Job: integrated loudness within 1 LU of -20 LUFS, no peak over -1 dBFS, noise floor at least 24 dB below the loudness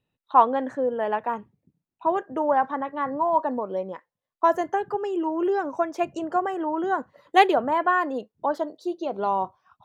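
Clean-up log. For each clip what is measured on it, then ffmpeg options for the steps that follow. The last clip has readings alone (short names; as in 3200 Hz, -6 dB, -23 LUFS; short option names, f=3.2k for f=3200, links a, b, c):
loudness -25.0 LUFS; peak -4.5 dBFS; loudness target -20.0 LUFS
-> -af "volume=5dB,alimiter=limit=-1dB:level=0:latency=1"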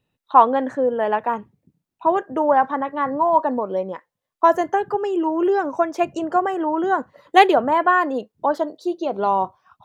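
loudness -20.0 LUFS; peak -1.0 dBFS; noise floor -83 dBFS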